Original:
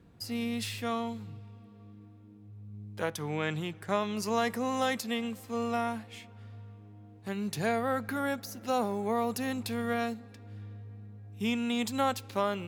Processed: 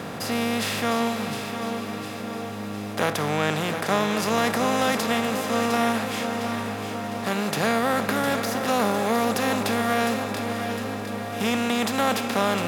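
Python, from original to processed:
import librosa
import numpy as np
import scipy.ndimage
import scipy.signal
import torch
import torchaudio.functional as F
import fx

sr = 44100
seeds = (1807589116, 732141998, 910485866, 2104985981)

y = fx.bin_compress(x, sr, power=0.4)
y = fx.echo_feedback(y, sr, ms=707, feedback_pct=51, wet_db=-8.5)
y = y * librosa.db_to_amplitude(2.5)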